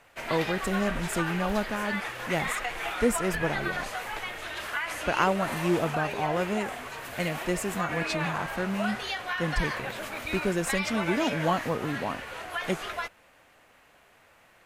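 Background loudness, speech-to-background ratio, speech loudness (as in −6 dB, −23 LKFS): −33.0 LKFS, 2.5 dB, −30.5 LKFS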